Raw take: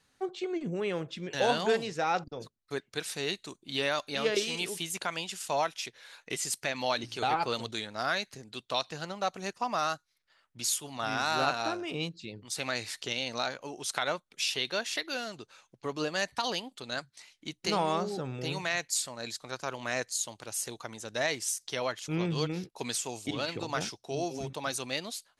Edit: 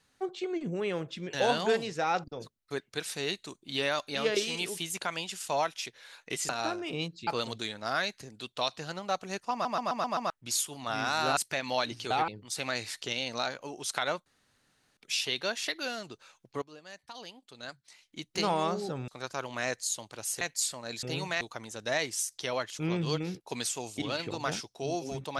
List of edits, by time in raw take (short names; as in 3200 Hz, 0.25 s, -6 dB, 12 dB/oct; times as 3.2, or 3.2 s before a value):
6.49–7.4 swap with 11.5–12.28
9.65 stutter in place 0.13 s, 6 plays
14.26 insert room tone 0.71 s
15.91–17.64 fade in quadratic, from -18.5 dB
18.37–18.75 swap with 19.37–20.7